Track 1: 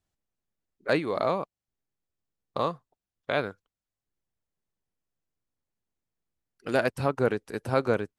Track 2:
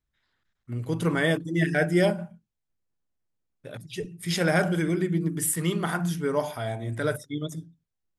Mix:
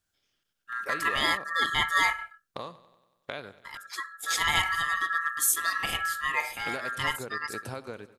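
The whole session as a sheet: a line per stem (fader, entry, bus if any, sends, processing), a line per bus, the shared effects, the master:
-3.0 dB, 0.00 s, no send, echo send -17 dB, compression 16:1, threshold -32 dBFS, peak gain reduction 14.5 dB
-3.5 dB, 0.00 s, no send, no echo send, high-pass 52 Hz; ring modulator 1.5 kHz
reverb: none
echo: feedback delay 94 ms, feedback 59%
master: treble shelf 2.2 kHz +9.5 dB

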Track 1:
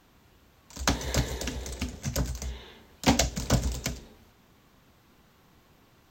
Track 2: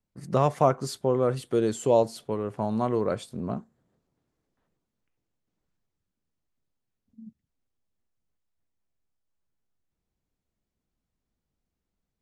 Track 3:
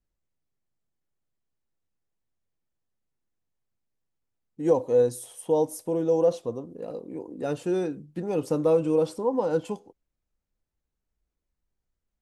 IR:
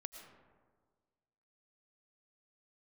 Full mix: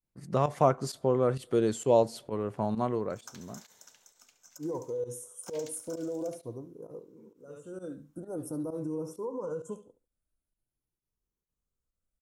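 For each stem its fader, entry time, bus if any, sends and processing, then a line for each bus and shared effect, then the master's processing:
-16.5 dB, 2.40 s, bus A, send -11.5 dB, echo send -8.5 dB, Bessel high-pass 1.6 kHz, order 2
2.78 s -5 dB -> 3.36 s -16 dB, 0.00 s, no bus, send -23.5 dB, no echo send, level rider gain up to 3 dB
-7.0 dB, 0.00 s, bus A, no send, echo send -15.5 dB, drifting ripple filter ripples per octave 0.78, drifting +0.47 Hz, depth 10 dB; graphic EQ with 31 bands 125 Hz +4 dB, 200 Hz -5 dB, 800 Hz -10 dB, 2.5 kHz -9 dB, 5 kHz -6 dB, 10 kHz +10 dB; auto duck -21 dB, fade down 0.30 s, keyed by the second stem
bus A: 0.0 dB, brick-wall FIR band-stop 1.6–5.1 kHz; peak limiter -28 dBFS, peak gain reduction 10 dB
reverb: on, RT60 1.6 s, pre-delay 70 ms
echo: feedback delay 71 ms, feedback 20%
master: volume shaper 131 bpm, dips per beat 1, -15 dB, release 79 ms

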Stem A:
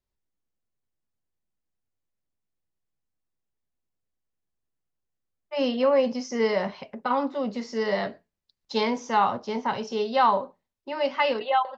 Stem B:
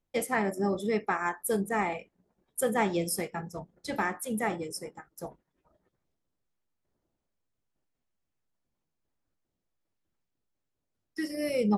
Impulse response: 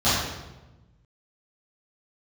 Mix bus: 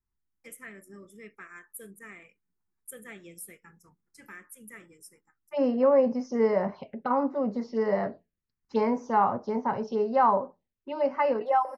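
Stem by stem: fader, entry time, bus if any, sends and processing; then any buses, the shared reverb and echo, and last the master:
+1.0 dB, 0.00 s, no send, low-pass 1.4 kHz 6 dB/octave
-13.5 dB, 0.30 s, no send, tilt EQ +2 dB/octave; auto duck -12 dB, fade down 0.40 s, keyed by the first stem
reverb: none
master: touch-sensitive phaser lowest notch 570 Hz, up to 3.5 kHz, full sweep at -25 dBFS

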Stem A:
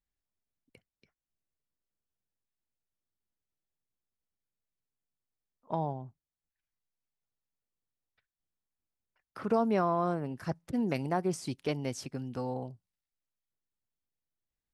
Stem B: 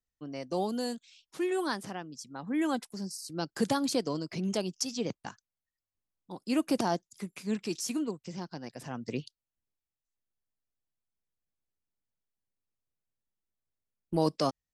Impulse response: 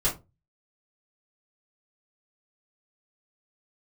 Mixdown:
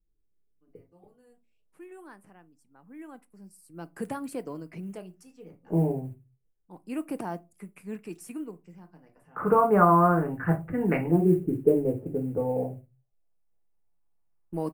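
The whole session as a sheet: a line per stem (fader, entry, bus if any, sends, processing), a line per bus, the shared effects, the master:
+1.0 dB, 0.00 s, send -8.5 dB, LFO low-pass saw up 0.18 Hz 350–2000 Hz
3.22 s -16 dB -> 3.98 s -5.5 dB, 0.40 s, send -23 dB, auto duck -21 dB, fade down 0.95 s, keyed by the first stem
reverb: on, RT60 0.25 s, pre-delay 3 ms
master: modulation noise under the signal 32 dB; high-order bell 4.7 kHz -16 dB 1.3 oct

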